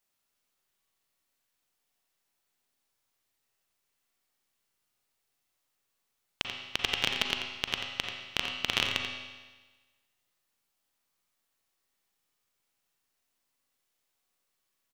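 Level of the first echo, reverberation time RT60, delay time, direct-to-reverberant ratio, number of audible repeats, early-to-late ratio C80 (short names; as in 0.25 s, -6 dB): -8.5 dB, 1.3 s, 87 ms, 1.0 dB, 1, 3.5 dB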